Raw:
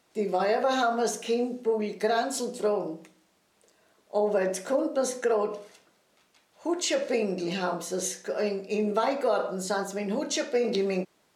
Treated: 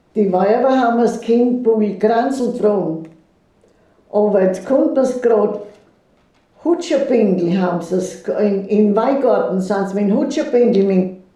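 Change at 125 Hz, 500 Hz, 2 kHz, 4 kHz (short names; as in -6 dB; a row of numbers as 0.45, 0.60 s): +17.0, +12.0, +5.0, 0.0 dB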